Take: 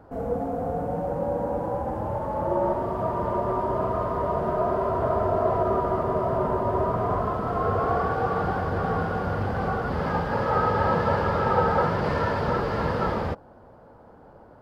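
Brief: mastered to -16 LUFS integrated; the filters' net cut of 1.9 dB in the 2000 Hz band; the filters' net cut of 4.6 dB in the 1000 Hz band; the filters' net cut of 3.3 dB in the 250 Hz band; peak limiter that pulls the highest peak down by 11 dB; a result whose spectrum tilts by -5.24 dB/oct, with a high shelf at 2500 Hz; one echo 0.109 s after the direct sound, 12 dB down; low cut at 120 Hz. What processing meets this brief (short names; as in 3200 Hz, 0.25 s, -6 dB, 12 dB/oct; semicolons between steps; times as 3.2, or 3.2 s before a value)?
HPF 120 Hz; bell 250 Hz -4 dB; bell 1000 Hz -6.5 dB; bell 2000 Hz -3 dB; high shelf 2500 Hz +8.5 dB; limiter -23 dBFS; echo 0.109 s -12 dB; gain +15.5 dB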